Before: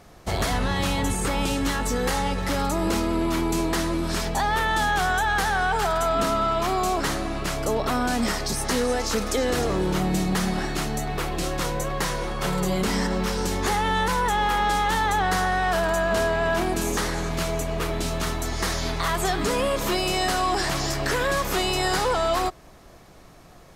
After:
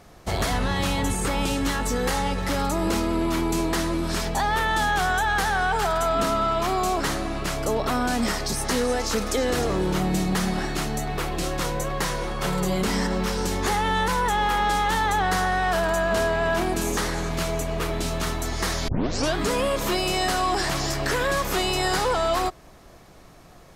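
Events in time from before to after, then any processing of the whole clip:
0:18.88: tape start 0.48 s

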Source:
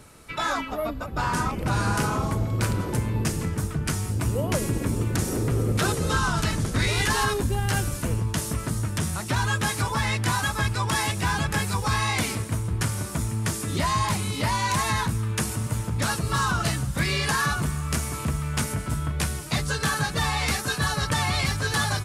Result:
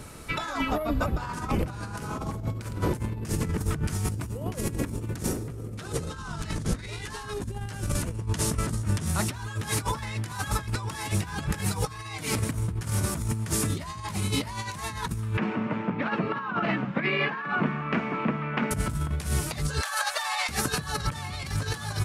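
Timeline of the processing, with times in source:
0:05.75–0:09.06: low-pass filter 11,000 Hz
0:11.65–0:12.33: comb filter 6.5 ms
0:15.37–0:18.71: elliptic band-pass filter 200–2,500 Hz, stop band 70 dB
0:19.81–0:20.49: elliptic high-pass filter 590 Hz
whole clip: compressor whose output falls as the input rises −30 dBFS, ratio −0.5; low-shelf EQ 340 Hz +3 dB

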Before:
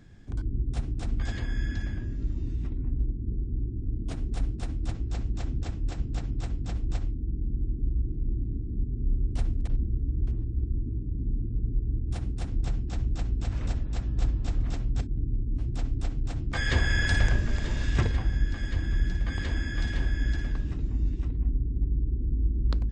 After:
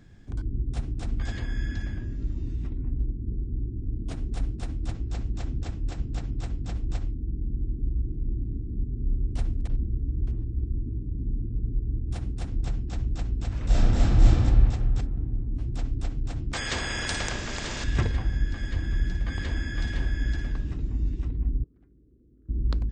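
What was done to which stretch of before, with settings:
0:13.66–0:14.29: thrown reverb, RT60 2.1 s, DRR −11.5 dB
0:16.53–0:17.84: every bin compressed towards the loudest bin 2 to 1
0:21.64–0:22.49: resonant band-pass 1,500 Hz, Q 1.9

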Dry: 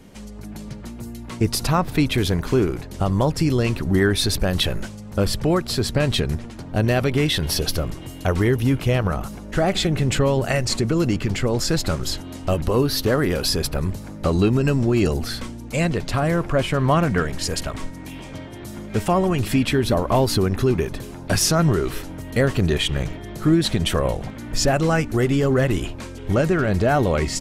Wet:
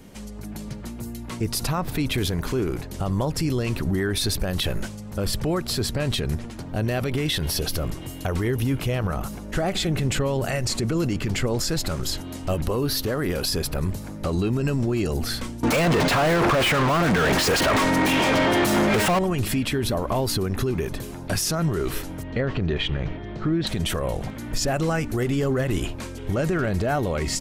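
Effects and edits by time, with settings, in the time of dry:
0:15.63–0:19.19: mid-hump overdrive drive 39 dB, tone 2,000 Hz, clips at −7 dBFS
0:22.23–0:23.67: Bessel low-pass filter 3,000 Hz, order 4
whole clip: high-shelf EQ 12,000 Hz +8 dB; brickwall limiter −15.5 dBFS

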